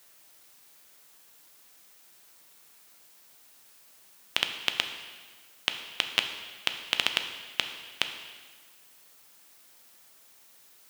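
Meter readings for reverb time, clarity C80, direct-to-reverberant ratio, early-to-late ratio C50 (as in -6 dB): 1.5 s, 9.5 dB, 6.0 dB, 8.0 dB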